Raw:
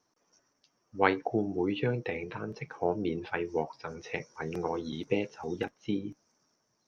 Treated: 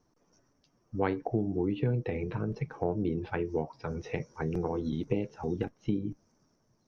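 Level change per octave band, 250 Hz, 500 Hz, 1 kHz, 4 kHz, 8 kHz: +1.5 dB, -1.0 dB, -4.5 dB, -8.0 dB, no reading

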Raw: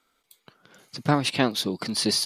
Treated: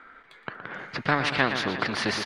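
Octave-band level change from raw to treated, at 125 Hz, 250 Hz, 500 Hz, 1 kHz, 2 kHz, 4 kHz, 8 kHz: -4.0 dB, -5.0 dB, -1.5 dB, +2.0 dB, +7.5 dB, -4.5 dB, -10.5 dB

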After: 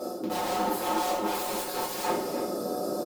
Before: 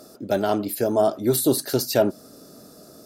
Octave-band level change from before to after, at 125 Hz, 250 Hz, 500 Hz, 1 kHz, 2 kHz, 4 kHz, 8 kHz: -14.0 dB, -8.0 dB, -8.5 dB, +2.0 dB, -1.0 dB, -4.0 dB, -6.5 dB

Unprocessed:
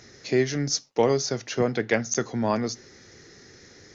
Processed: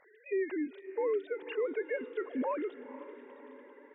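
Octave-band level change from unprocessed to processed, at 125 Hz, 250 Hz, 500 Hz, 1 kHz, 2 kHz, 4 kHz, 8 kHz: under -40 dB, -10.5 dB, -7.5 dB, -10.5 dB, -11.5 dB, under -20 dB, no reading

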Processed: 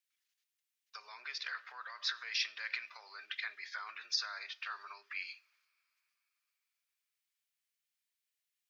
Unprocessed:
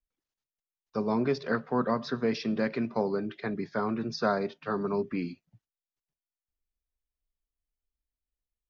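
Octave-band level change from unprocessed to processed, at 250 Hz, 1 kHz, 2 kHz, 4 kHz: under -40 dB, -14.0 dB, -1.5 dB, +5.5 dB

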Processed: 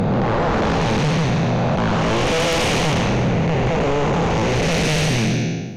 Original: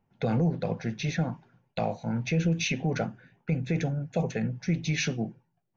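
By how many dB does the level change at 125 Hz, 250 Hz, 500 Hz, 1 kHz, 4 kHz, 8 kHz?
+9.5 dB, +9.5 dB, +14.0 dB, +17.5 dB, +14.5 dB, no reading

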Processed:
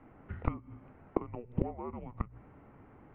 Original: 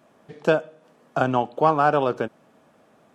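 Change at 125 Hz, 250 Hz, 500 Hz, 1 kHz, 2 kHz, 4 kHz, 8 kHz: -7.0 dB, -11.0 dB, -19.0 dB, -22.5 dB, -26.0 dB, under -30 dB, no reading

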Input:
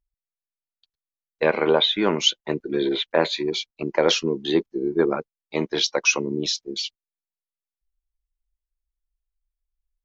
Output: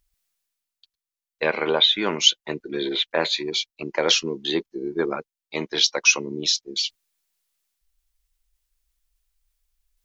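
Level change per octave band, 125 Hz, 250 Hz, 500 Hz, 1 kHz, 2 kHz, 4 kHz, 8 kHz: -5.0 dB, -4.5 dB, -4.0 dB, -2.0 dB, +2.0 dB, +3.5 dB, no reading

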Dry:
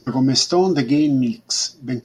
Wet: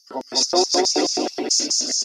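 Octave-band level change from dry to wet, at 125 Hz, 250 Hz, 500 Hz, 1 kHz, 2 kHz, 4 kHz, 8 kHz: under -25 dB, -9.5 dB, -0.5 dB, +2.0 dB, -1.0 dB, +3.0 dB, +5.5 dB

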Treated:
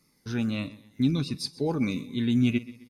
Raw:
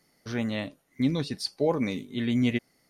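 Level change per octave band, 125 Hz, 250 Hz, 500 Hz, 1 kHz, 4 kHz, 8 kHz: +3.0 dB, +1.5 dB, -4.5 dB, -3.5 dB, -0.5 dB, +0.5 dB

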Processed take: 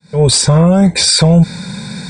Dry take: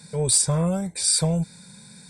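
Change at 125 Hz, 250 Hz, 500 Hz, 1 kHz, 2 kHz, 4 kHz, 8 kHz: +14.5 dB, +15.5 dB, +14.0 dB, +14.0 dB, +19.0 dB, +14.0 dB, +5.5 dB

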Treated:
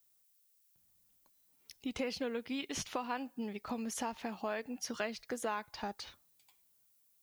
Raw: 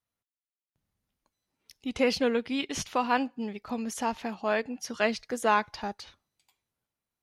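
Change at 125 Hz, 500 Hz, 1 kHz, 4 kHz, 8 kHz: -7.0 dB, -10.5 dB, -11.5 dB, -7.5 dB, -4.5 dB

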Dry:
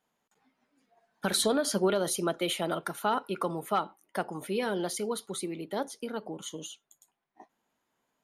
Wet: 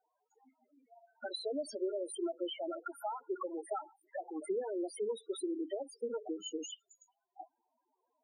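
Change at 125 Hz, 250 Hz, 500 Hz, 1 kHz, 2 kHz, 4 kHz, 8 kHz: under -30 dB, -7.0 dB, -6.0 dB, -11.0 dB, -16.0 dB, -11.0 dB, -14.0 dB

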